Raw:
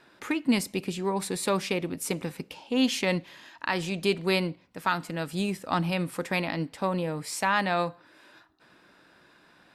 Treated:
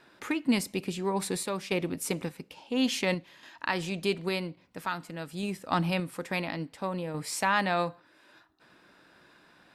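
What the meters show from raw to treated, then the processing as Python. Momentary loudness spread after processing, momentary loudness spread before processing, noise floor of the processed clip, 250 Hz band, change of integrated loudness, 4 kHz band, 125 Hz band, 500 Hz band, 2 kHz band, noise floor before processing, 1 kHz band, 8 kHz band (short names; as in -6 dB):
9 LU, 7 LU, -62 dBFS, -2.5 dB, -2.5 dB, -2.5 dB, -2.5 dB, -3.0 dB, -2.0 dB, -60 dBFS, -2.0 dB, -1.5 dB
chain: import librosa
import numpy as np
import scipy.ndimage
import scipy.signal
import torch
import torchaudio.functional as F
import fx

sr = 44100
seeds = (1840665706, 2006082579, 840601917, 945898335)

y = fx.tremolo_random(x, sr, seeds[0], hz=3.5, depth_pct=55)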